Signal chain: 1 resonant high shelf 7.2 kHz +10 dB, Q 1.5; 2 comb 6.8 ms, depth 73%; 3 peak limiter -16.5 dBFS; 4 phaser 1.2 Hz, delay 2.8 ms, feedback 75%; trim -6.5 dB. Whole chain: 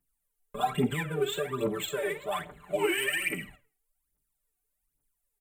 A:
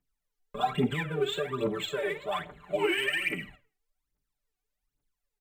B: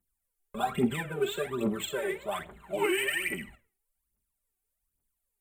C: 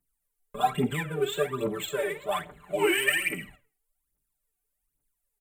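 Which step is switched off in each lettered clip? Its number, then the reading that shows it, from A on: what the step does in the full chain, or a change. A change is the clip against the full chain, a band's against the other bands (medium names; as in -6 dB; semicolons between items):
1, 8 kHz band -8.5 dB; 2, 250 Hz band +3.0 dB; 3, crest factor change +3.0 dB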